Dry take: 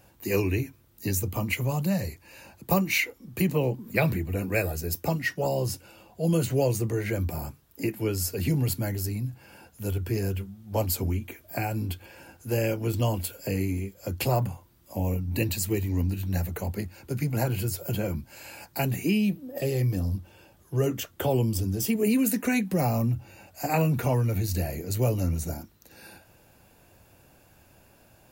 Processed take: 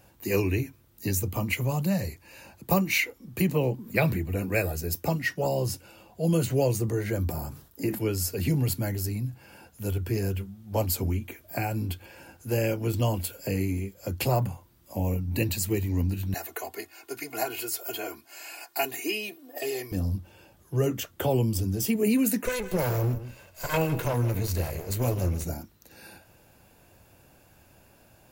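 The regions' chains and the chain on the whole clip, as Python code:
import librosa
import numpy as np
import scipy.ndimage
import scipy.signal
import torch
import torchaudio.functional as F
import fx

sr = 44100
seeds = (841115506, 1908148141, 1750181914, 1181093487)

y = fx.chain(x, sr, fx.peak_eq(hz=2400.0, db=-6.0, octaves=0.56),
    fx.sustainer(db_per_s=120.0), at=(6.8, 7.99))
y = fx.chain(y, sr, fx.highpass(hz=520.0, slope=12),
    fx.comb(ms=2.8, depth=0.97), at=(16.34, 19.92))
y = fx.chain(y, sr, fx.lower_of_two(delay_ms=1.9),
    fx.echo_single(ms=159, db=-13.5), at=(22.46, 25.44))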